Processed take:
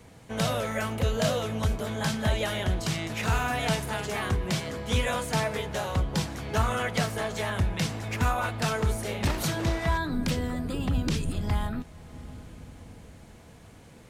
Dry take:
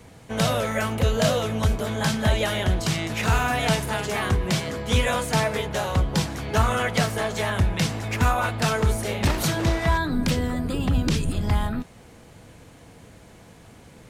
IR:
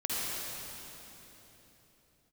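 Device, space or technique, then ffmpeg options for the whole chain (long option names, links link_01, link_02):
ducked reverb: -filter_complex "[0:a]asplit=3[link_01][link_02][link_03];[1:a]atrim=start_sample=2205[link_04];[link_02][link_04]afir=irnorm=-1:irlink=0[link_05];[link_03]apad=whole_len=621400[link_06];[link_05][link_06]sidechaincompress=threshold=-38dB:ratio=8:attack=16:release=437,volume=-16.5dB[link_07];[link_01][link_07]amix=inputs=2:normalize=0,volume=-5dB"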